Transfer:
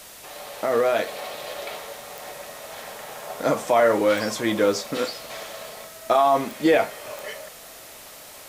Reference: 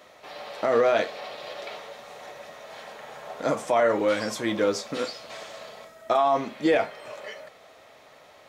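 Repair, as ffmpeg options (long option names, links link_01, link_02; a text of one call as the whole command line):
ffmpeg -i in.wav -af "adeclick=threshold=4,afwtdn=0.0071,asetnsamples=nb_out_samples=441:pad=0,asendcmd='1.07 volume volume -3.5dB',volume=0dB" out.wav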